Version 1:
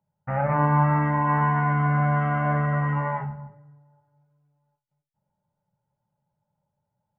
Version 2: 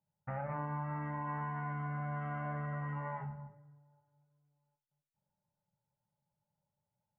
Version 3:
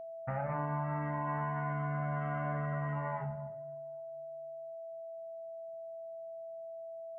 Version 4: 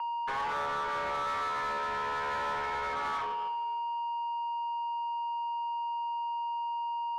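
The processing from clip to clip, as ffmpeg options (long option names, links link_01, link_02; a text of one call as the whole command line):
ffmpeg -i in.wav -af "acompressor=threshold=-28dB:ratio=4,volume=-9dB" out.wav
ffmpeg -i in.wav -af "aeval=exprs='val(0)+0.00562*sin(2*PI*660*n/s)':channel_layout=same,volume=3dB" out.wav
ffmpeg -i in.wav -filter_complex "[0:a]highpass=frequency=210:width_type=q:width=0.5412,highpass=frequency=210:width_type=q:width=1.307,lowpass=frequency=2500:width_type=q:width=0.5176,lowpass=frequency=2500:width_type=q:width=0.7071,lowpass=frequency=2500:width_type=q:width=1.932,afreqshift=280,asplit=2[link_01][link_02];[link_02]highpass=frequency=720:poles=1,volume=23dB,asoftclip=type=tanh:threshold=-26dB[link_03];[link_01][link_03]amix=inputs=2:normalize=0,lowpass=frequency=2200:poles=1,volume=-6dB" out.wav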